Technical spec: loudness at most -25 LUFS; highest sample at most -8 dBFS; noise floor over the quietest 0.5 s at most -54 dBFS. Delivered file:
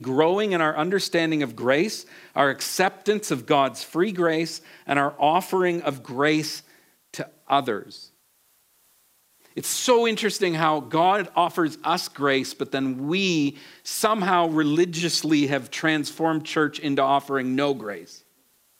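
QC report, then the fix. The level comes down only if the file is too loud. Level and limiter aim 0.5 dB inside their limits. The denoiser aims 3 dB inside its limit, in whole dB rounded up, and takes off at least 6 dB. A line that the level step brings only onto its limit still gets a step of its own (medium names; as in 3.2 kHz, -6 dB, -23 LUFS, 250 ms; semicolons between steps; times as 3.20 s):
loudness -23.0 LUFS: fail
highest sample -5.0 dBFS: fail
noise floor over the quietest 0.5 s -63 dBFS: pass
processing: trim -2.5 dB; peak limiter -8.5 dBFS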